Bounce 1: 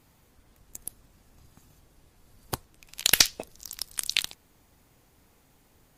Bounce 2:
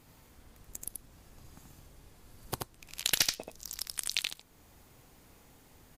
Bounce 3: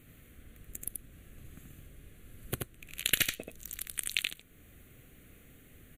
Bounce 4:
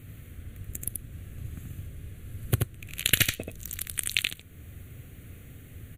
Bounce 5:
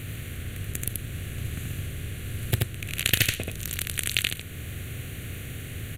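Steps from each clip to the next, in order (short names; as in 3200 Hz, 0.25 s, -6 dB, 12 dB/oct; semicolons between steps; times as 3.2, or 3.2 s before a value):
compressor 1.5:1, threshold -45 dBFS, peak gain reduction 12 dB; echo 81 ms -3 dB; gain +1.5 dB
fixed phaser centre 2200 Hz, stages 4; gain +4 dB
bell 95 Hz +13 dB 1.2 oct; gain +5 dB
per-bin compression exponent 0.6; Doppler distortion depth 0.31 ms; gain -1 dB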